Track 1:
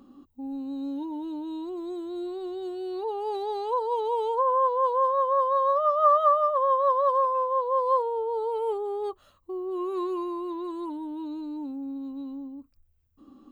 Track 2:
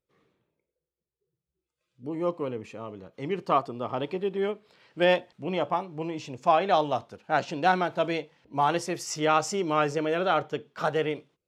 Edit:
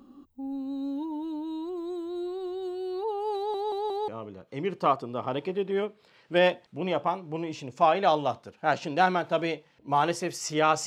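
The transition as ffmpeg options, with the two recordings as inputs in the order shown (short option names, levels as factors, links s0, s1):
-filter_complex "[0:a]apad=whole_dur=10.86,atrim=end=10.86,asplit=4[s0][s1][s2][s3];[s0]atrim=end=3.542[s4];[s1]atrim=start=3.358:end=3.542[s5];[s2]atrim=start=3.358:end=3.542[s6];[s3]atrim=start=3.358:end=3.542[s7];[1:a]atrim=start=2.738:end=9.52[s8];[s4][s5]acrossfade=d=0.004:c1=hsin:c2=hsin[s9];[s9][s6]acrossfade=d=0.004:c1=hsin:c2=hsin[s10];[s10][s7]acrossfade=d=0.004:c1=hsin:c2=hsin[s11];[s11][s8]acrossfade=d=0.004:c1=hsin:c2=hsin"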